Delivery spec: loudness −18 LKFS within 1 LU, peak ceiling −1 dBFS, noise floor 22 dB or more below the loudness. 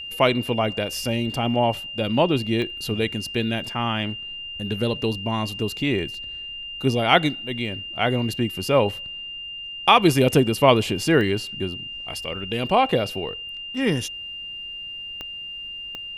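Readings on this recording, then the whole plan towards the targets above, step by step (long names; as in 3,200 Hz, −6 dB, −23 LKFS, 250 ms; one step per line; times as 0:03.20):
number of clicks 4; interfering tone 2,800 Hz; level of the tone −32 dBFS; integrated loudness −23.5 LKFS; sample peak −1.5 dBFS; target loudness −18.0 LKFS
→ click removal
notch filter 2,800 Hz, Q 30
level +5.5 dB
brickwall limiter −1 dBFS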